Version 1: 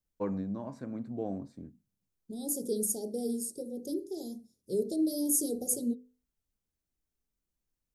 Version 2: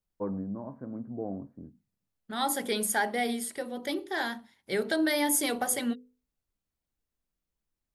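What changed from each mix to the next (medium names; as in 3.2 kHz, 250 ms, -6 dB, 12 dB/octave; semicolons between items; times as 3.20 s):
first voice: add low-pass 1.4 kHz 24 dB/octave; second voice: remove elliptic band-stop 470–5600 Hz, stop band 50 dB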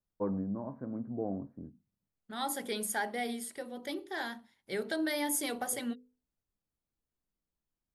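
second voice -6.0 dB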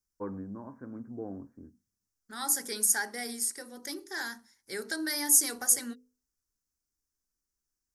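second voice: add resonant high shelf 4.3 kHz +10 dB, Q 3; master: add fifteen-band graphic EQ 160 Hz -11 dB, 630 Hz -9 dB, 1.6 kHz +6 dB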